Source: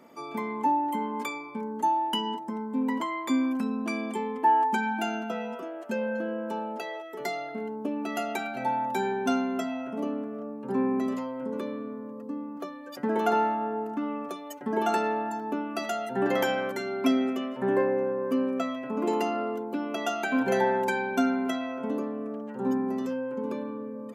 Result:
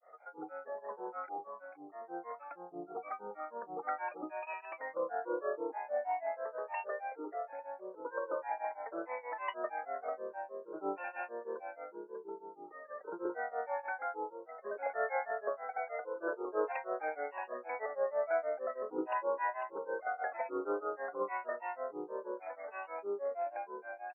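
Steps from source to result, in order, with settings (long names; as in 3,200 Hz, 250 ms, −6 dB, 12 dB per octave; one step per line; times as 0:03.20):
high-pass filter 500 Hz 24 dB per octave
comb filter 1.7 ms, depth 97%
compressor whose output falls as the input rises −27 dBFS, ratio −0.5
linear-phase brick-wall low-pass 2,000 Hz
rotating-speaker cabinet horn 0.7 Hz
feedback echo with a low-pass in the loop 377 ms, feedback 63%, low-pass 850 Hz, level −6.5 dB
granular cloud 192 ms, grains 6.3 per second, pitch spread up and down by 7 semitones
level −1 dB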